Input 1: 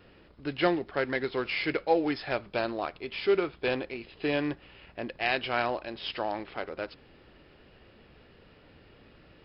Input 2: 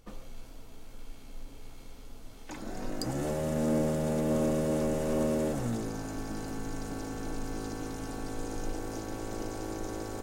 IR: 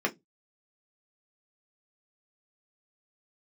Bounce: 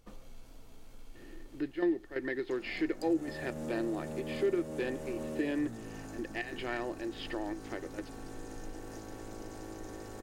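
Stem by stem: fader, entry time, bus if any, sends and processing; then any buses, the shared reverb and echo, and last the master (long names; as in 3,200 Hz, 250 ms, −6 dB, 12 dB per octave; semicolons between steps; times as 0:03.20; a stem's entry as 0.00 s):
−4.0 dB, 1.15 s, no send, gate pattern "xxxxx.xx.xxxx" 134 BPM −12 dB; hollow resonant body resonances 330/1,800 Hz, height 17 dB
−4.5 dB, 0.00 s, no send, no processing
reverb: not used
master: downward compressor 1.5 to 1, threshold −46 dBFS, peak gain reduction 11.5 dB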